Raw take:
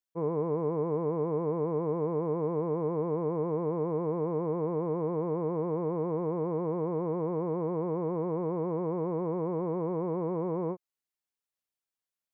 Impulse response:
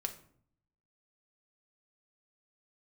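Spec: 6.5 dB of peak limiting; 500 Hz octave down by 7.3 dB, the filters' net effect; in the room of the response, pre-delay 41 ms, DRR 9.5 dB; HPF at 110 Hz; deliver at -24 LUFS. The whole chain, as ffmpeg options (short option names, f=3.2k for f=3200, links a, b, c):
-filter_complex "[0:a]highpass=110,equalizer=f=500:t=o:g=-8.5,alimiter=level_in=7dB:limit=-24dB:level=0:latency=1,volume=-7dB,asplit=2[a][b];[1:a]atrim=start_sample=2205,adelay=41[c];[b][c]afir=irnorm=-1:irlink=0,volume=-9.5dB[d];[a][d]amix=inputs=2:normalize=0,volume=16dB"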